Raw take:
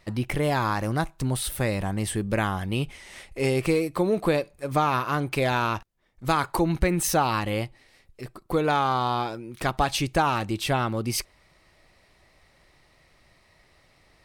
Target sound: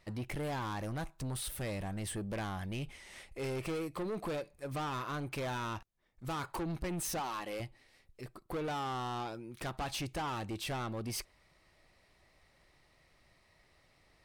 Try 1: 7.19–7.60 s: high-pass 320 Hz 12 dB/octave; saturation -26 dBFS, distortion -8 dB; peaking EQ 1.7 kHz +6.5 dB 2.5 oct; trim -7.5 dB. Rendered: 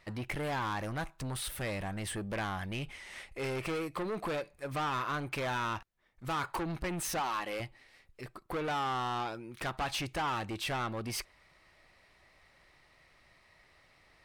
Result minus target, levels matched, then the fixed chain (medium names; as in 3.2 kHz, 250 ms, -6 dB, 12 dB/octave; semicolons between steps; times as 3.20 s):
2 kHz band +3.5 dB
7.19–7.60 s: high-pass 320 Hz 12 dB/octave; saturation -26 dBFS, distortion -8 dB; trim -7.5 dB